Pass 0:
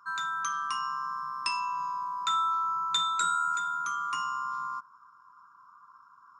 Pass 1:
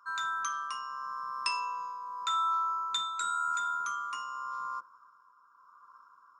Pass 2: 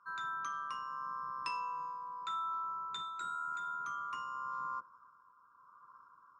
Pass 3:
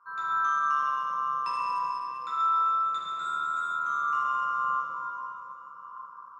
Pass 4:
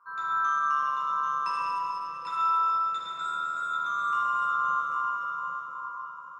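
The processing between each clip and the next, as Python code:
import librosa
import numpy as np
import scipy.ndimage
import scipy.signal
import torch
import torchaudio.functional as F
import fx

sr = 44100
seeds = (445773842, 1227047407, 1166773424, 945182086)

y1 = fx.octave_divider(x, sr, octaves=1, level_db=-5.0)
y1 = fx.tremolo_shape(y1, sr, shape='triangle', hz=0.88, depth_pct=55)
y1 = fx.highpass(y1, sr, hz=440.0, slope=6)
y2 = fx.riaa(y1, sr, side='playback')
y2 = fx.rider(y2, sr, range_db=3, speed_s=0.5)
y2 = y2 * 10.0 ** (-5.0 / 20.0)
y3 = fx.peak_eq(y2, sr, hz=860.0, db=10.0, octaves=2.1)
y3 = fx.rev_plate(y3, sr, seeds[0], rt60_s=3.9, hf_ratio=0.8, predelay_ms=0, drr_db=-8.0)
y3 = y3 * 10.0 ** (-5.5 / 20.0)
y4 = fx.echo_feedback(y3, sr, ms=790, feedback_pct=18, wet_db=-6)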